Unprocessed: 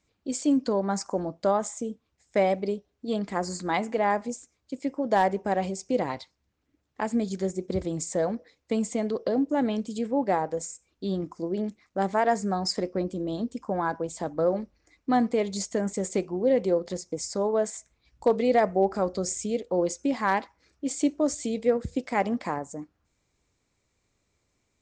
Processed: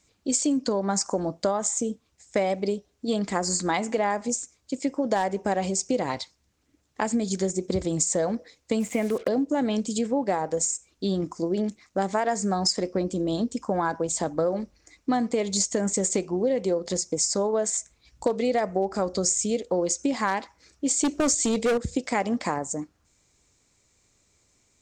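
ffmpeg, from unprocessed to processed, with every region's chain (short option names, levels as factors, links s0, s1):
-filter_complex "[0:a]asettb=1/sr,asplit=3[s0][s1][s2];[s0]atrim=end=8.804[s3];[s1]atrim=start=8.8:end=9.28,asetpts=PTS-STARTPTS,afade=t=in:d=0.004:c=qsin,afade=t=out:st=0.476:d=0.004:c=qsin,highshelf=f=3300:t=q:w=3:g=-11,acrusher=bits=7:mix=0:aa=0.5[s4];[s2]atrim=start=9.276[s5];[s3][s4]acrossfade=d=0.004:c1=hsin:c2=qsin[s6];[s6][s5]acrossfade=d=0.004:c1=qsin:c2=hsin,asettb=1/sr,asplit=3[s7][s8][s9];[s7]atrim=end=21.044[s10];[s8]atrim=start=21.04:end=21.78,asetpts=PTS-STARTPTS,afade=t=in:d=0.004:c=qsin,afade=t=out:st=0.736:d=0.004:c=qsin,acontrast=47,asoftclip=type=hard:threshold=0.106[s11];[s9]atrim=start=21.776[s12];[s10][s11]acrossfade=d=0.004:c1=hsin:c2=qsin[s13];[s13][s12]acrossfade=d=0.004:c1=qsin:c2=hsin,equalizer=f=7700:t=o:w=1.5:g=9.5,acompressor=threshold=0.0501:ratio=6,volume=1.78"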